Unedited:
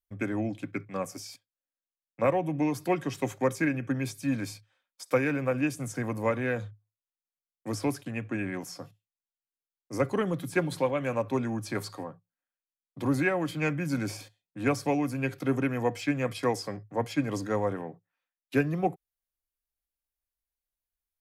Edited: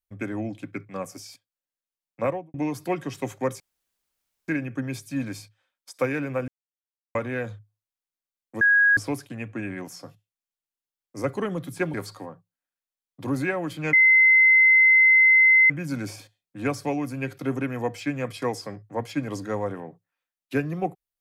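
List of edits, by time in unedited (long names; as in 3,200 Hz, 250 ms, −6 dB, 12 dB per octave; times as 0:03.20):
0:02.23–0:02.54: fade out and dull
0:03.60: splice in room tone 0.88 s
0:05.60–0:06.27: silence
0:07.73: insert tone 1,650 Hz −14.5 dBFS 0.36 s
0:10.70–0:11.72: remove
0:13.71: insert tone 2,060 Hz −12.5 dBFS 1.77 s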